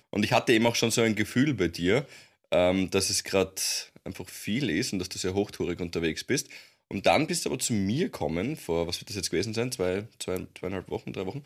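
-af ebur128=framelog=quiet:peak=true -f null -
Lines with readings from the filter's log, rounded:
Integrated loudness:
  I:         -27.7 LUFS
  Threshold: -38.0 LUFS
Loudness range:
  LRA:         5.3 LU
  Threshold: -48.3 LUFS
  LRA low:   -30.8 LUFS
  LRA high:  -25.5 LUFS
True peak:
  Peak:       -8.5 dBFS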